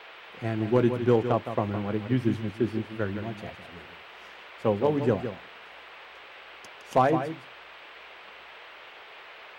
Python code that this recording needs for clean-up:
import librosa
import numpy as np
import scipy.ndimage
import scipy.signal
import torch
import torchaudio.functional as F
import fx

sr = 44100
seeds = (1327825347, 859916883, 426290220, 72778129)

y = fx.fix_declip(x, sr, threshold_db=-12.0)
y = fx.noise_reduce(y, sr, print_start_s=7.46, print_end_s=7.96, reduce_db=24.0)
y = fx.fix_echo_inverse(y, sr, delay_ms=163, level_db=-9.5)